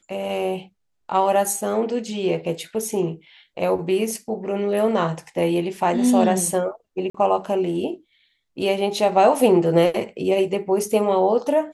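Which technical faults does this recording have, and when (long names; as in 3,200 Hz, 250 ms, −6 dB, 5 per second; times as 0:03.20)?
0:07.10–0:07.14: drop-out 44 ms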